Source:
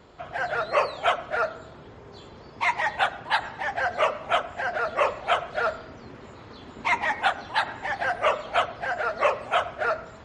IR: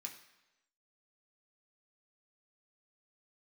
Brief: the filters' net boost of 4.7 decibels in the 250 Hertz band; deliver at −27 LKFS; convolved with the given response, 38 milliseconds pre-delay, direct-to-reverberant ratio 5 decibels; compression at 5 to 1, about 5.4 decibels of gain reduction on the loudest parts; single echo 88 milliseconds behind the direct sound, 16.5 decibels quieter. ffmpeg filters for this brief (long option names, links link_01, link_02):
-filter_complex "[0:a]equalizer=frequency=250:width_type=o:gain=6,acompressor=threshold=-23dB:ratio=5,aecho=1:1:88:0.15,asplit=2[link_01][link_02];[1:a]atrim=start_sample=2205,adelay=38[link_03];[link_02][link_03]afir=irnorm=-1:irlink=0,volume=-1dB[link_04];[link_01][link_04]amix=inputs=2:normalize=0,volume=1dB"